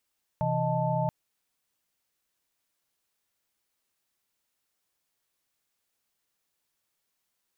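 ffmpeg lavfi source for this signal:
-f lavfi -i "aevalsrc='0.0316*(sin(2*PI*130.81*t)+sin(2*PI*164.81*t)+sin(2*PI*622.25*t)+sin(2*PI*880*t))':d=0.68:s=44100"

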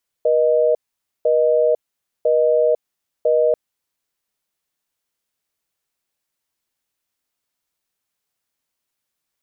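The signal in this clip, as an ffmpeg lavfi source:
-f lavfi -i "aevalsrc='0.168*(sin(2*PI*480*t)+sin(2*PI*620*t))*clip(min(mod(t,1),0.5-mod(t,1))/0.005,0,1)':d=3.29:s=44100"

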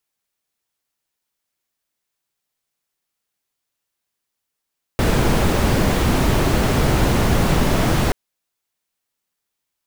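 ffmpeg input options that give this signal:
-f lavfi -i "anoisesrc=c=brown:a=0.741:d=3.13:r=44100:seed=1"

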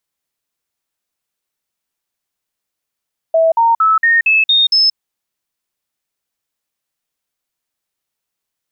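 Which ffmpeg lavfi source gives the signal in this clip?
-f lavfi -i "aevalsrc='0.398*clip(min(mod(t,0.23),0.18-mod(t,0.23))/0.005,0,1)*sin(2*PI*652*pow(2,floor(t/0.23)/2)*mod(t,0.23))':d=1.61:s=44100"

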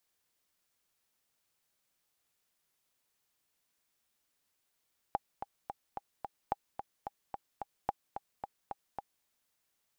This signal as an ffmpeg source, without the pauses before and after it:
-f lavfi -i "aevalsrc='pow(10,(-17-8.5*gte(mod(t,5*60/219),60/219))/20)*sin(2*PI*808*mod(t,60/219))*exp(-6.91*mod(t,60/219)/0.03)':d=4.1:s=44100"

